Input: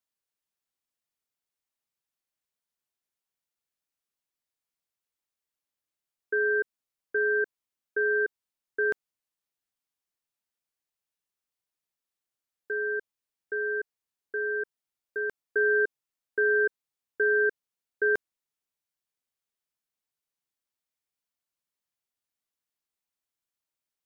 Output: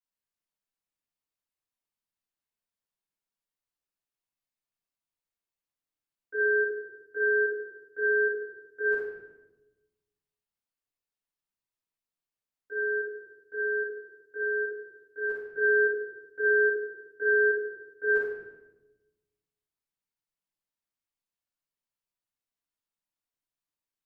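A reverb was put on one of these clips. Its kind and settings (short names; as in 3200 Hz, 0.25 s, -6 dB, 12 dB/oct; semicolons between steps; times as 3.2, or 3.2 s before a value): shoebox room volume 490 m³, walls mixed, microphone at 7.6 m; gain -18.5 dB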